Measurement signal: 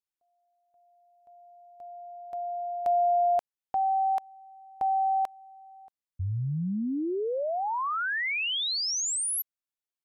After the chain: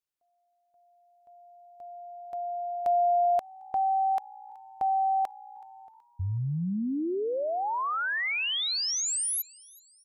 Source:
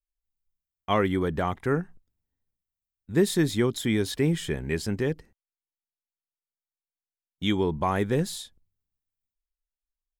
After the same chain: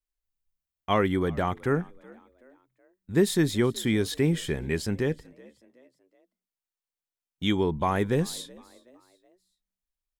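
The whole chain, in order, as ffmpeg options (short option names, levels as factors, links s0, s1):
-filter_complex "[0:a]asplit=4[s0][s1][s2][s3];[s1]adelay=375,afreqshift=60,volume=0.0631[s4];[s2]adelay=750,afreqshift=120,volume=0.0279[s5];[s3]adelay=1125,afreqshift=180,volume=0.0122[s6];[s0][s4][s5][s6]amix=inputs=4:normalize=0"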